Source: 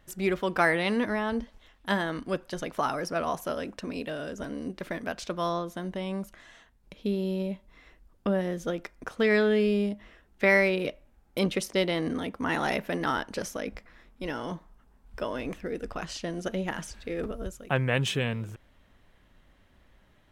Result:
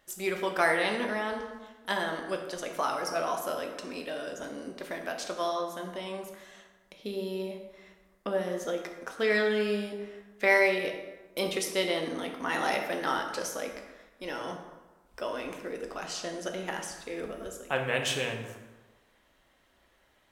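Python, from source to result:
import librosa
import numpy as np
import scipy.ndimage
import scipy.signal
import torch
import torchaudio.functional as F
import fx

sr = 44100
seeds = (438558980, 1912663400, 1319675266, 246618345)

y = fx.bass_treble(x, sr, bass_db=-13, treble_db=5)
y = fx.rev_plate(y, sr, seeds[0], rt60_s=1.2, hf_ratio=0.6, predelay_ms=0, drr_db=2.5)
y = y * 10.0 ** (-2.5 / 20.0)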